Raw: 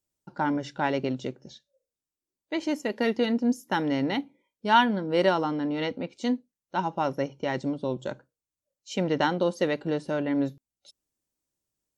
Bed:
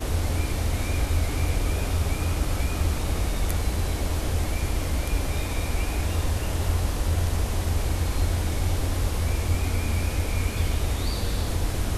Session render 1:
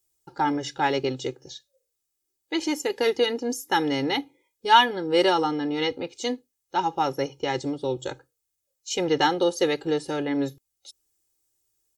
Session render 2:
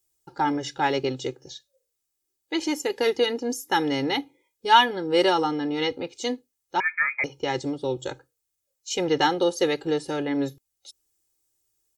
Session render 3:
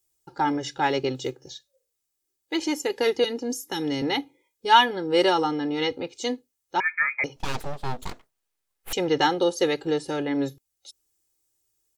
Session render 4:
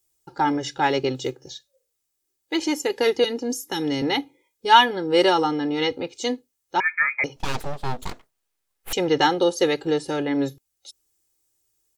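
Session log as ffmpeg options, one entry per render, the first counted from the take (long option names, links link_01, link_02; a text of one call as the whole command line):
ffmpeg -i in.wav -af "highshelf=frequency=3900:gain=11,aecho=1:1:2.4:0.87" out.wav
ffmpeg -i in.wav -filter_complex "[0:a]asettb=1/sr,asplit=3[link_01][link_02][link_03];[link_01]atrim=end=6.804[link_04];[link_02]atrim=start=6.8:end=7.24,asetpts=PTS-STARTPTS,afade=type=in:duration=0.004:curve=qsin,afade=type=out:start_time=0.436:duration=0.004:curve=qsin,lowpass=frequency=2200:width_type=q:width=0.5098,lowpass=frequency=2200:width_type=q:width=0.6013,lowpass=frequency=2200:width_type=q:width=0.9,lowpass=frequency=2200:width_type=q:width=2.563,afreqshift=-2600[link_05];[link_03]atrim=start=7.236[link_06];[link_04][link_05]acrossfade=duration=0.004:curve1=hsin:curve2=qsin[link_07];[link_07][link_06]acrossfade=duration=0.004:curve1=qsin:curve2=hsin" out.wav
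ffmpeg -i in.wav -filter_complex "[0:a]asettb=1/sr,asplit=3[link_01][link_02][link_03];[link_01]atrim=end=1.154[link_04];[link_02]atrim=start=1.15:end=2.57,asetpts=PTS-STARTPTS,afade=type=in:duration=0.004:curve=qsin,afade=type=out:start_time=1.416:duration=0.004:curve=qsin,acrusher=bits=9:mode=log:mix=0:aa=0.000001[link_05];[link_03]atrim=start=2.566[link_06];[link_04][link_05]acrossfade=duration=0.004:curve1=hsin:curve2=qsin[link_07];[link_07][link_06]acrossfade=duration=0.004:curve1=qsin:curve2=hsin,asettb=1/sr,asplit=3[link_08][link_09][link_10];[link_08]atrim=end=3.244[link_11];[link_09]atrim=start=3.24:end=4.02,asetpts=PTS-STARTPTS,afade=type=in:duration=0.004:curve=qsin,afade=type=out:start_time=0.776:duration=0.004:curve=qsin,acrossover=split=390|3000[link_12][link_13][link_14];[link_13]acompressor=threshold=-33dB:ratio=6:attack=3.2:release=140:knee=2.83:detection=peak[link_15];[link_12][link_15][link_14]amix=inputs=3:normalize=0[link_16];[link_10]atrim=start=4.016[link_17];[link_11][link_16]acrossfade=duration=0.004:curve1=hsin:curve2=qsin[link_18];[link_18][link_17]acrossfade=duration=0.004:curve1=qsin:curve2=hsin,asettb=1/sr,asplit=3[link_19][link_20][link_21];[link_19]atrim=end=7.364[link_22];[link_20]atrim=start=7.36:end=8.93,asetpts=PTS-STARTPTS,afade=type=in:duration=0.004:curve=qsin,afade=type=out:start_time=1.566:duration=0.004:curve=qsin,aeval=exprs='abs(val(0))':channel_layout=same[link_23];[link_21]atrim=start=8.926[link_24];[link_22][link_23]acrossfade=duration=0.004:curve1=hsin:curve2=qsin[link_25];[link_25][link_24]acrossfade=duration=0.004:curve1=qsin:curve2=hsin" out.wav
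ffmpeg -i in.wav -af "volume=2.5dB" out.wav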